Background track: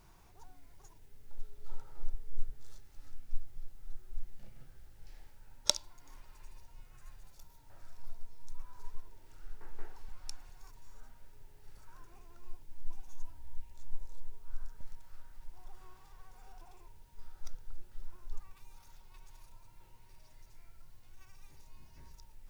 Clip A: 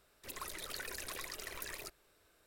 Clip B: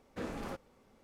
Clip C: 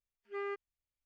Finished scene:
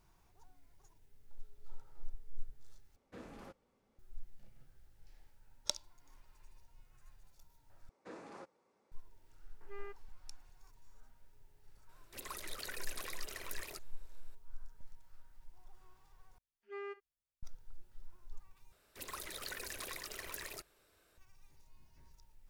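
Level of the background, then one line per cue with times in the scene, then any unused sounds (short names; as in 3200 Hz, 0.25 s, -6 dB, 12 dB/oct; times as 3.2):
background track -8 dB
2.96 replace with B -11.5 dB
7.89 replace with B -9.5 dB + speaker cabinet 210–9400 Hz, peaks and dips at 240 Hz -7 dB, 340 Hz +3 dB, 970 Hz +4 dB, 3100 Hz -6 dB
9.37 add C -11 dB
11.89 add A -1.5 dB
16.38 replace with C -6 dB + early reflections 37 ms -17 dB, 63 ms -17.5 dB
18.72 replace with A -1 dB + block floating point 5-bit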